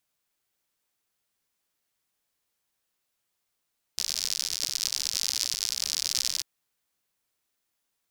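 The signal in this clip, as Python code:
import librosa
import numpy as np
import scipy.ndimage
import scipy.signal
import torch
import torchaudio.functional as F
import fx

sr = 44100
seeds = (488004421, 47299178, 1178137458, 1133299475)

y = fx.rain(sr, seeds[0], length_s=2.44, drops_per_s=89.0, hz=5100.0, bed_db=-29)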